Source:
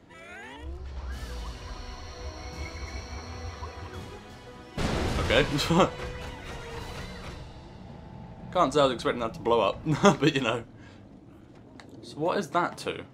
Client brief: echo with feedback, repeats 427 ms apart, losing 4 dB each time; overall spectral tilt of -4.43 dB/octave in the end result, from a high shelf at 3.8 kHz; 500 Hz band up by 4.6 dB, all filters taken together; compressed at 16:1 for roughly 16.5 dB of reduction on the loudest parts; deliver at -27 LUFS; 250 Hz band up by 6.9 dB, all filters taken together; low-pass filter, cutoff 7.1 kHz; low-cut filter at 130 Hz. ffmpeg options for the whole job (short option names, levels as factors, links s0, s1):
-af "highpass=130,lowpass=7100,equalizer=f=250:t=o:g=9,equalizer=f=500:t=o:g=3,highshelf=f=3800:g=5,acompressor=threshold=0.0562:ratio=16,aecho=1:1:427|854|1281|1708|2135|2562|2989|3416|3843:0.631|0.398|0.25|0.158|0.0994|0.0626|0.0394|0.0249|0.0157,volume=1.88"